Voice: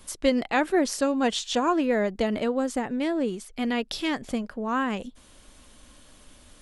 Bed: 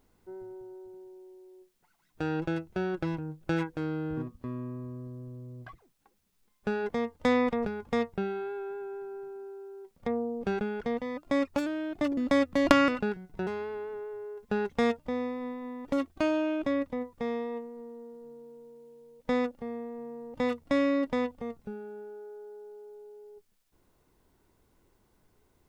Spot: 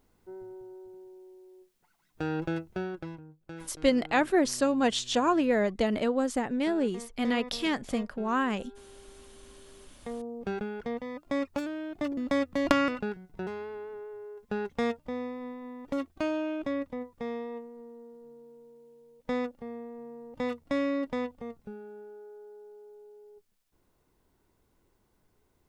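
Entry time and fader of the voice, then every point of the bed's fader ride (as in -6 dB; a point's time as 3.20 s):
3.60 s, -1.5 dB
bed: 2.71 s -0.5 dB
3.36 s -14.5 dB
9.44 s -14.5 dB
10.49 s -3 dB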